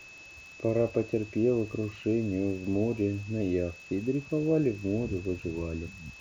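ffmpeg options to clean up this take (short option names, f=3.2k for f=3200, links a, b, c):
-af "adeclick=t=4,bandreject=f=2.6k:w=30,afwtdn=0.0022"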